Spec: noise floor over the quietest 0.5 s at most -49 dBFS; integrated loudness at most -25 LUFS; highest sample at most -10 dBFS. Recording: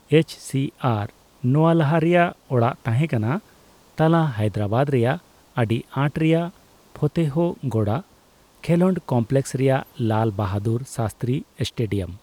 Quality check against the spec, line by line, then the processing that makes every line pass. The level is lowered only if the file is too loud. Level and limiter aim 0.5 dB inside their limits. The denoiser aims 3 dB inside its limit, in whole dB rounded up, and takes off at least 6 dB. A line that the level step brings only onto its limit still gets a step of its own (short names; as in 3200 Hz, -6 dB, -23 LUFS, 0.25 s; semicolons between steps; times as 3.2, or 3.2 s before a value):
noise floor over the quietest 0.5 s -55 dBFS: OK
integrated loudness -22.5 LUFS: fail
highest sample -5.0 dBFS: fail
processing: gain -3 dB; limiter -10.5 dBFS